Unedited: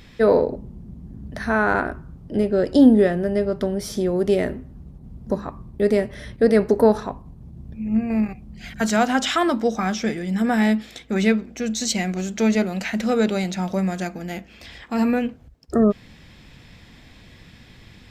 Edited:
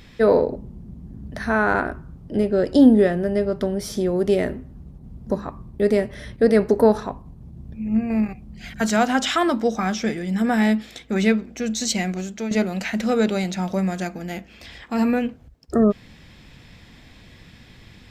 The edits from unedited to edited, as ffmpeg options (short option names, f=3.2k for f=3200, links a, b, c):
-filter_complex "[0:a]asplit=2[a][b];[a]atrim=end=12.51,asetpts=PTS-STARTPTS,afade=t=out:st=12.07:d=0.44:silence=0.266073[c];[b]atrim=start=12.51,asetpts=PTS-STARTPTS,afade=t=in:d=0.004:c=hsin:silence=0.266073[d];[c][d]concat=n=2:v=0:a=1"